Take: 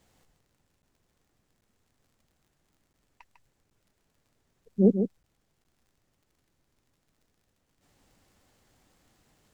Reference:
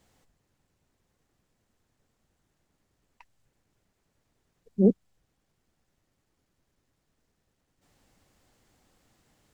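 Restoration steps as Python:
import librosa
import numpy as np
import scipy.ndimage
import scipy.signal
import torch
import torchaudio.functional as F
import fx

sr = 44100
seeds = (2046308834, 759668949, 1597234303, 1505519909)

y = fx.fix_declick_ar(x, sr, threshold=6.5)
y = fx.fix_interpolate(y, sr, at_s=(0.82, 1.61, 2.93, 3.7, 5.23, 5.64), length_ms=9.9)
y = fx.fix_echo_inverse(y, sr, delay_ms=150, level_db=-7.5)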